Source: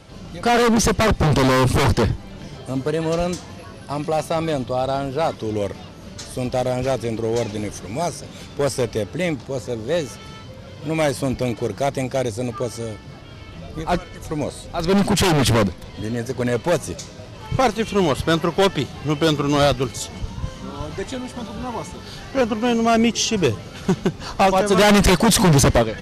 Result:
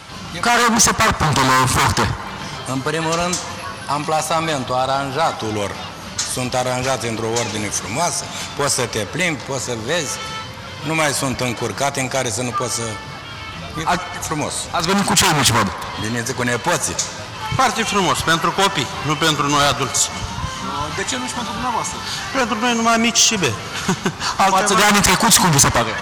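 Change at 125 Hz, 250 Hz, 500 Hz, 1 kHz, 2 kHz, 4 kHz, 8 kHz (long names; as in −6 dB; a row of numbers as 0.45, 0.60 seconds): −1.0, −1.5, −2.0, +6.0, +7.5, +7.0, +10.0 decibels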